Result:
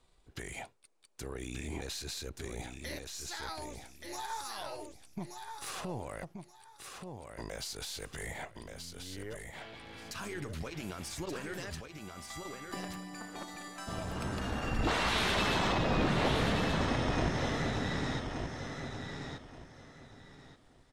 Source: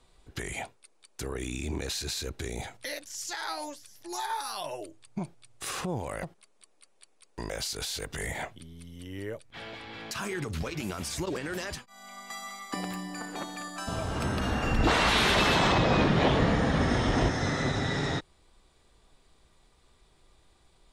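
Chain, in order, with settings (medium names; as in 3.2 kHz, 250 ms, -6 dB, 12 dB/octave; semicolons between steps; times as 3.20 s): partial rectifier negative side -3 dB; feedback delay 1178 ms, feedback 23%, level -6 dB; trim -5.5 dB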